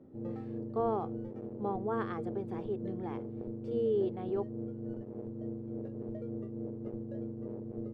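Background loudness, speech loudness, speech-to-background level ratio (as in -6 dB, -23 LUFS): -41.0 LUFS, -36.5 LUFS, 4.5 dB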